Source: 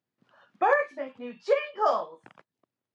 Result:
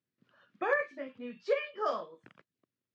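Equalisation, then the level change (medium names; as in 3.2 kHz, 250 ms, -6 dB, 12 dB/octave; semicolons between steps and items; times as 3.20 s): distance through air 86 m; peaking EQ 820 Hz -12.5 dB 0.86 oct; -1.5 dB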